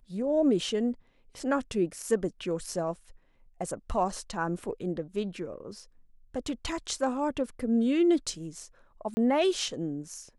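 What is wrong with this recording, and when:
9.14–9.17 s: dropout 30 ms

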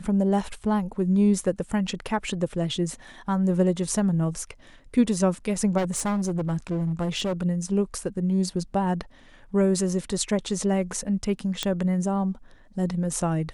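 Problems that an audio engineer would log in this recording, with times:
5.77–7.43 s: clipped -22 dBFS
11.63 s: pop -10 dBFS

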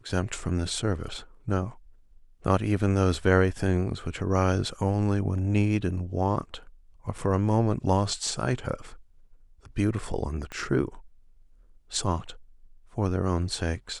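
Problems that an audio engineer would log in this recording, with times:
7.18 s: dropout 4.1 ms
10.52 s: pop -22 dBFS

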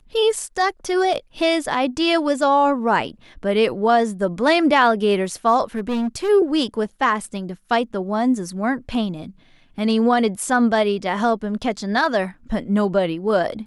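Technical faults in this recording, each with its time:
5.75–6.30 s: clipped -19 dBFS

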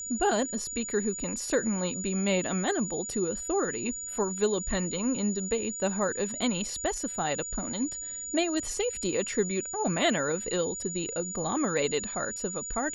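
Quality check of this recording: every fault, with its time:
whine 6.9 kHz -35 dBFS

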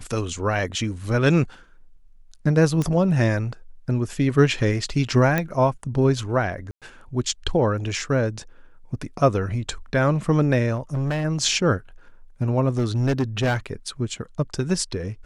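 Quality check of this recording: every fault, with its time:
2.82 s: pop -13 dBFS
5.38 s: pop -9 dBFS
6.71–6.82 s: dropout 107 ms
10.75–11.25 s: clipped -21 dBFS
12.71–13.57 s: clipped -17 dBFS

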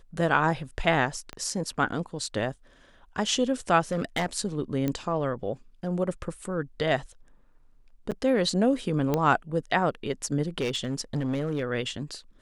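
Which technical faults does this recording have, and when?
1.33 s: pop -22 dBFS
3.91–4.26 s: clipped -21 dBFS
4.88 s: pop -15 dBFS
8.11–8.12 s: dropout 7.6 ms
9.14 s: pop -12 dBFS
10.60–11.62 s: clipped -23 dBFS

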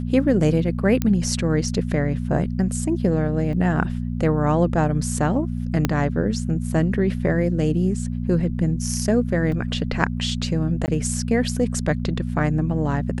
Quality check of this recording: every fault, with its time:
hum 60 Hz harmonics 4 -26 dBFS
1.02 s: pop -8 dBFS
3.53 s: dropout 3 ms
5.85 s: pop -5 dBFS
9.52 s: dropout 3.2 ms
10.86–10.88 s: dropout 19 ms

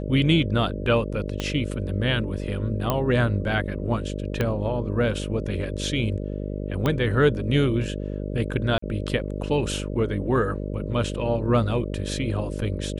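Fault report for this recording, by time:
buzz 50 Hz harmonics 12 -30 dBFS
1.40 s: pop -13 dBFS
2.90 s: pop -9 dBFS
4.41 s: pop -11 dBFS
6.86 s: pop -11 dBFS
8.78–8.82 s: dropout 44 ms

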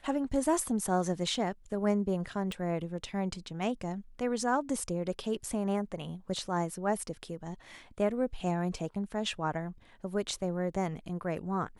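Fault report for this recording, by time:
2.52 s: pop

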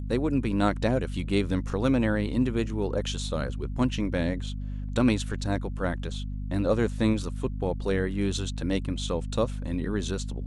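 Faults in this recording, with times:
hum 50 Hz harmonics 5 -33 dBFS

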